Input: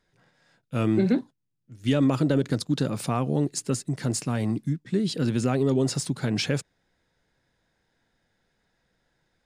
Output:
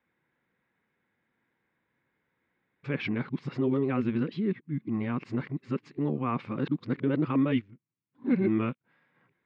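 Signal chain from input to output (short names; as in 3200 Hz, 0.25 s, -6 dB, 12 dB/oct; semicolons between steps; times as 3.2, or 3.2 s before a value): whole clip reversed; speaker cabinet 110–2900 Hz, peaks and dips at 240 Hz +4 dB, 350 Hz +3 dB, 660 Hz -6 dB, 1100 Hz +7 dB, 2200 Hz +7 dB; gain -5.5 dB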